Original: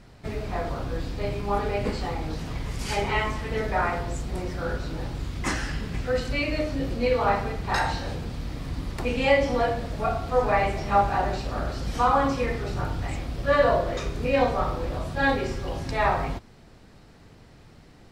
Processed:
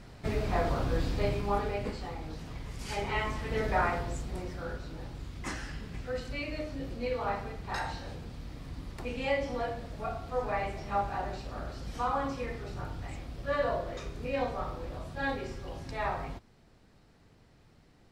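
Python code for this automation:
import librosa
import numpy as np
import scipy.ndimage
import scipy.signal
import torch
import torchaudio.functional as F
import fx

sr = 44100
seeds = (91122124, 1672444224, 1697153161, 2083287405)

y = fx.gain(x, sr, db=fx.line((1.17, 0.5), (1.98, -9.5), (2.75, -9.5), (3.73, -2.5), (4.83, -10.0)))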